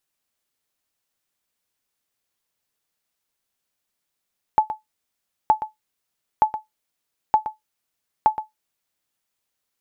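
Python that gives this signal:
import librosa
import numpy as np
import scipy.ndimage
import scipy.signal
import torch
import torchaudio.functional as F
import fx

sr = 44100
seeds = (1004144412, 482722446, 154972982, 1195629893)

y = fx.sonar_ping(sr, hz=864.0, decay_s=0.15, every_s=0.92, pings=5, echo_s=0.12, echo_db=-12.0, level_db=-6.5)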